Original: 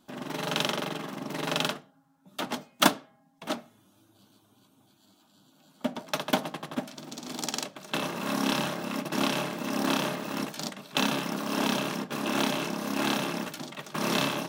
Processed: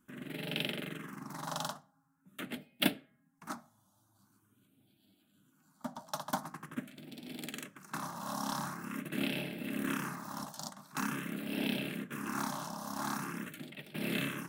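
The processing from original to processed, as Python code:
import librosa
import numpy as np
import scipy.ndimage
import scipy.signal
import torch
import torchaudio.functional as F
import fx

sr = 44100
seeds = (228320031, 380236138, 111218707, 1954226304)

y = fx.phaser_stages(x, sr, stages=4, low_hz=390.0, high_hz=1100.0, hz=0.45, feedback_pct=25)
y = y * librosa.db_to_amplitude(-5.0)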